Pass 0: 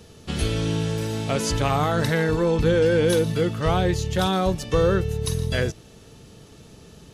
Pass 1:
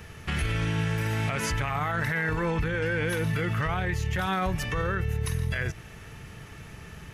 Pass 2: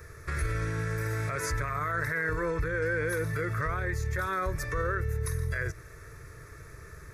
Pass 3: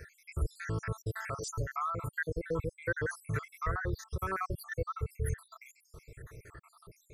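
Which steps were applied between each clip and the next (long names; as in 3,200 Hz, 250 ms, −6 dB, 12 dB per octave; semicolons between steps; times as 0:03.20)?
graphic EQ with 10 bands 250 Hz −8 dB, 500 Hz −8 dB, 2,000 Hz +10 dB, 4,000 Hz −10 dB, 8,000 Hz −7 dB; downward compressor, threshold −25 dBFS, peak gain reduction 7.5 dB; brickwall limiter −25.5 dBFS, peak gain reduction 10.5 dB; level +6 dB
phaser with its sweep stopped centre 800 Hz, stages 6
time-frequency cells dropped at random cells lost 75%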